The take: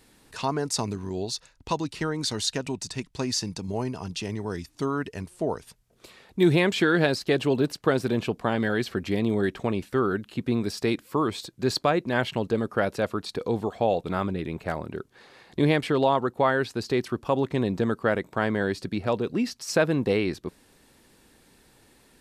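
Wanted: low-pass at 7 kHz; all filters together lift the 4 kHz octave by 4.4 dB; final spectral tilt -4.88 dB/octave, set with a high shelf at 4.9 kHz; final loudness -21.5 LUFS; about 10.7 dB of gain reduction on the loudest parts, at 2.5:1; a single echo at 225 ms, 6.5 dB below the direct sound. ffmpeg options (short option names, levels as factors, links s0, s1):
-af "lowpass=7000,equalizer=f=4000:t=o:g=7.5,highshelf=f=4900:g=-3.5,acompressor=threshold=0.0224:ratio=2.5,aecho=1:1:225:0.473,volume=3.98"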